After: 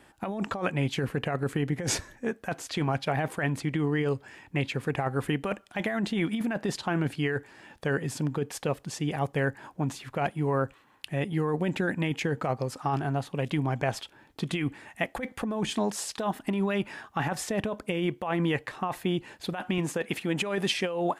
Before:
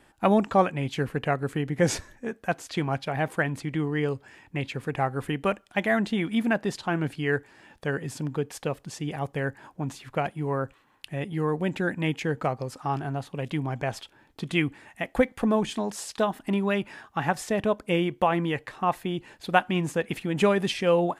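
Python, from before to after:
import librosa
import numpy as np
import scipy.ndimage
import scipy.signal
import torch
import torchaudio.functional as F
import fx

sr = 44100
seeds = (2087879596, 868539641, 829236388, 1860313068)

y = fx.highpass(x, sr, hz=fx.steps((0.0, 45.0), (19.78, 230.0)), slope=6)
y = fx.over_compress(y, sr, threshold_db=-27.0, ratio=-1.0)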